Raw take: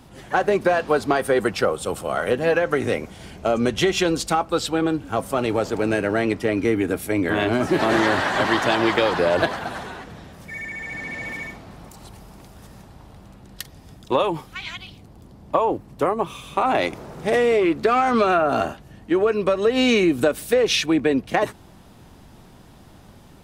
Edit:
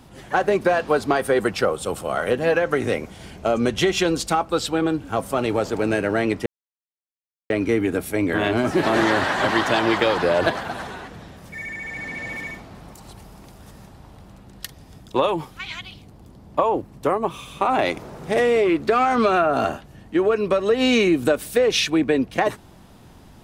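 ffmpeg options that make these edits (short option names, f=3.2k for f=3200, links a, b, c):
-filter_complex "[0:a]asplit=2[a][b];[a]atrim=end=6.46,asetpts=PTS-STARTPTS,afade=t=out:st=6.456:d=0.004:c=hsin,apad=pad_dur=1.04[c];[b]atrim=start=6.46,asetpts=PTS-STARTPTS,afade=t=in:d=0.004:c=hsin[d];[c][d]concat=n=2:v=0:a=1"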